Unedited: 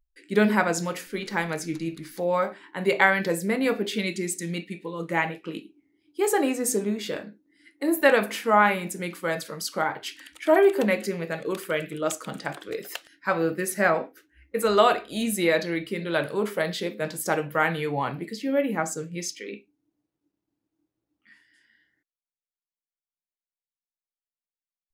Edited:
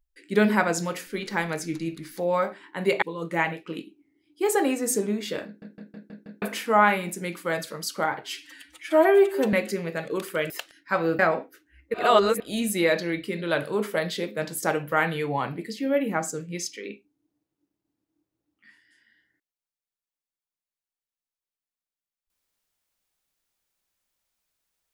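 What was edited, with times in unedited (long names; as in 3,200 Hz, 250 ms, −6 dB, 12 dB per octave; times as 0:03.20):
0:03.02–0:04.80: remove
0:07.24: stutter in place 0.16 s, 6 plays
0:10.02–0:10.88: time-stretch 1.5×
0:11.85–0:12.86: remove
0:13.55–0:13.82: remove
0:14.57–0:15.03: reverse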